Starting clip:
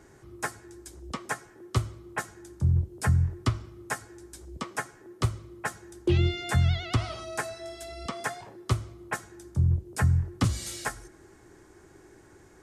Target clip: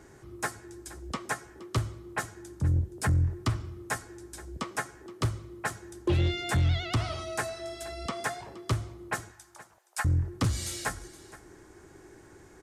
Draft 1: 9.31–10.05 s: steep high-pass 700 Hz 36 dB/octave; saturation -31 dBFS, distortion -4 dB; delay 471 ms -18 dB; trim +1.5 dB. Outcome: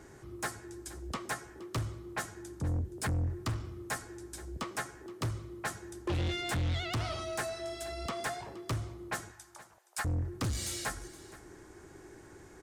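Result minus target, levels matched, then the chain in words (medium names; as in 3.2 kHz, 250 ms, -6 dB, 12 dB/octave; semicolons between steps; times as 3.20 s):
saturation: distortion +8 dB
9.31–10.05 s: steep high-pass 700 Hz 36 dB/octave; saturation -21.5 dBFS, distortion -12 dB; delay 471 ms -18 dB; trim +1.5 dB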